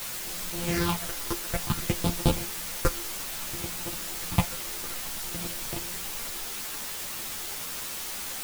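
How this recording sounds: a buzz of ramps at a fixed pitch in blocks of 256 samples; phasing stages 6, 0.58 Hz, lowest notch 170–2000 Hz; a quantiser's noise floor 6-bit, dither triangular; a shimmering, thickened sound

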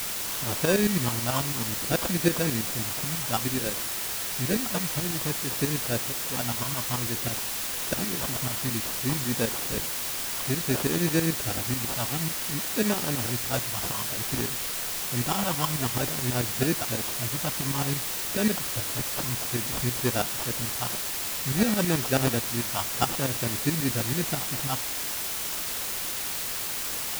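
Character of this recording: phasing stages 4, 0.56 Hz, lowest notch 430–1700 Hz; aliases and images of a low sample rate 2100 Hz, jitter 0%; tremolo saw up 9.2 Hz, depth 75%; a quantiser's noise floor 6-bit, dither triangular

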